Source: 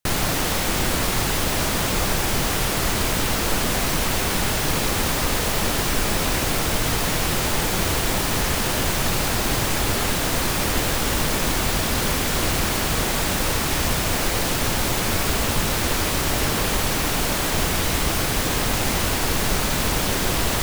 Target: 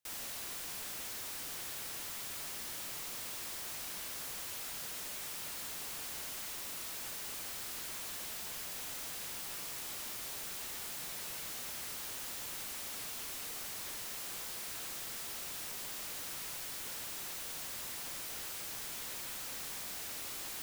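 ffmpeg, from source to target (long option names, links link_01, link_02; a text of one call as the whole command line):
ffmpeg -i in.wav -af "highpass=51,alimiter=limit=-15dB:level=0:latency=1:release=28,aeval=exprs='0.0266*(abs(mod(val(0)/0.0266+3,4)-2)-1)':channel_layout=same,volume=-6.5dB" out.wav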